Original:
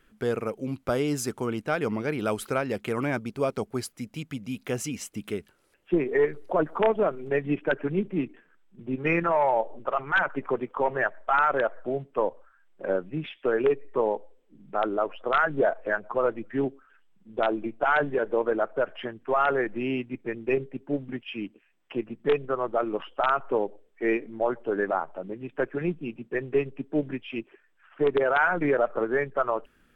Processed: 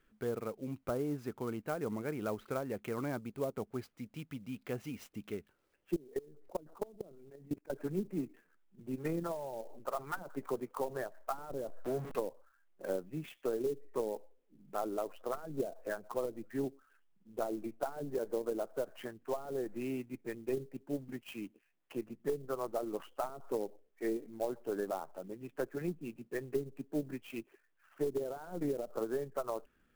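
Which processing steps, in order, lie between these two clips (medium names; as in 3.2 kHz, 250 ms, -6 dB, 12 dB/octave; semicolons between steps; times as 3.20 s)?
11.40–12.20 s: jump at every zero crossing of -29.5 dBFS; low-pass that closes with the level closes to 370 Hz, closed at -19 dBFS; treble shelf 2.7 kHz -3 dB; 5.96–7.70 s: level held to a coarse grid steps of 23 dB; sampling jitter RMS 0.026 ms; trim -9 dB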